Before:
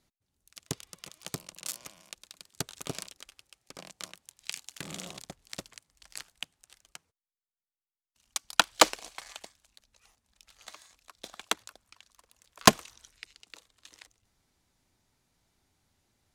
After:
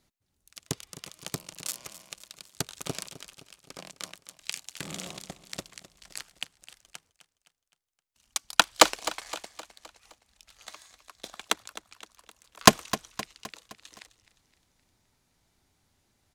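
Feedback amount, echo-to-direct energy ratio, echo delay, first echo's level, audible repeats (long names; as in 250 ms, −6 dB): 50%, −13.5 dB, 259 ms, −15.0 dB, 4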